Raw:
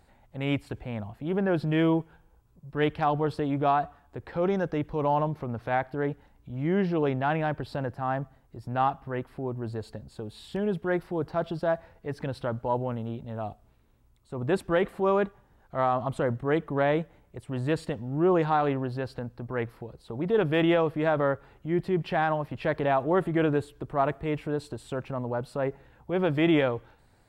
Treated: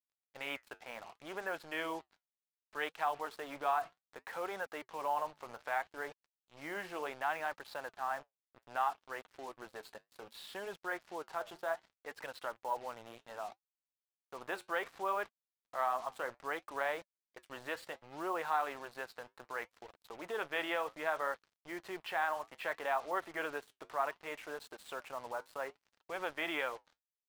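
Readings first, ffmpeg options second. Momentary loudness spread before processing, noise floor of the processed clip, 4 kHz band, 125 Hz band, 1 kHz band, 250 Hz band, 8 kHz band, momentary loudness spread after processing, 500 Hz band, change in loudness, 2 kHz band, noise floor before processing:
12 LU, below −85 dBFS, −6.0 dB, −33.0 dB, −7.5 dB, −22.5 dB, can't be measured, 13 LU, −14.0 dB, −11.5 dB, −4.0 dB, −62 dBFS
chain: -filter_complex "[0:a]highpass=1100,highshelf=frequency=2900:gain=-11,asplit=2[link_01][link_02];[link_02]acompressor=threshold=-47dB:ratio=16,volume=1.5dB[link_03];[link_01][link_03]amix=inputs=2:normalize=0,acrusher=bits=7:mix=0:aa=0.5,flanger=delay=1.2:depth=8.8:regen=-70:speed=0.65:shape=triangular,volume=2dB"

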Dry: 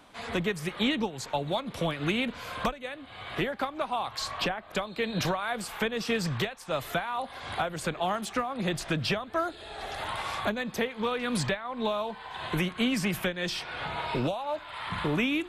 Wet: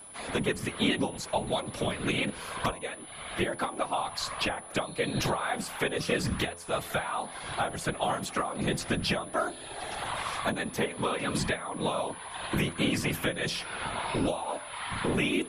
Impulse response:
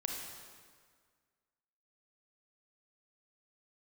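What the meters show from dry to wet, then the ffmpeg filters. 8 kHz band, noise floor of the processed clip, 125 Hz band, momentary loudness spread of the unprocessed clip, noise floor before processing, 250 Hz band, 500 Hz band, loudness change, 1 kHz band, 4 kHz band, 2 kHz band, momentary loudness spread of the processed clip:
+4.5 dB, −44 dBFS, 0.0 dB, 7 LU, −46 dBFS, −1.0 dB, 0.0 dB, 0.0 dB, 0.0 dB, 0.0 dB, 0.0 dB, 6 LU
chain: -af "afftfilt=real='hypot(re,im)*cos(2*PI*random(0))':imag='hypot(re,im)*sin(2*PI*random(1))':win_size=512:overlap=0.75,aeval=exprs='val(0)+0.00251*sin(2*PI*10000*n/s)':channel_layout=same,bandreject=frequency=85.29:width_type=h:width=4,bandreject=frequency=170.58:width_type=h:width=4,bandreject=frequency=255.87:width_type=h:width=4,bandreject=frequency=341.16:width_type=h:width=4,bandreject=frequency=426.45:width_type=h:width=4,bandreject=frequency=511.74:width_type=h:width=4,bandreject=frequency=597.03:width_type=h:width=4,bandreject=frequency=682.32:width_type=h:width=4,bandreject=frequency=767.61:width_type=h:width=4,bandreject=frequency=852.9:width_type=h:width=4,bandreject=frequency=938.19:width_type=h:width=4,bandreject=frequency=1023.48:width_type=h:width=4,bandreject=frequency=1108.77:width_type=h:width=4,volume=6dB"

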